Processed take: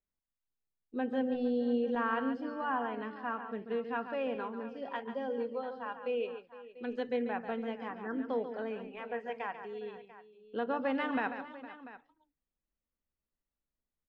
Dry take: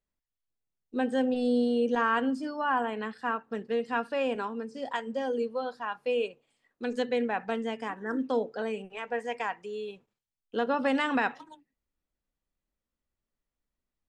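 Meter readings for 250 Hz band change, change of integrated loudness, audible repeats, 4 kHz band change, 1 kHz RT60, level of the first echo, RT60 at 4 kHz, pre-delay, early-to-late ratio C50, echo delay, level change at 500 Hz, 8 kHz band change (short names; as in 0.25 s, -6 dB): -4.5 dB, -5.5 dB, 3, -9.5 dB, none, -9.5 dB, none, none, none, 0.141 s, -5.0 dB, n/a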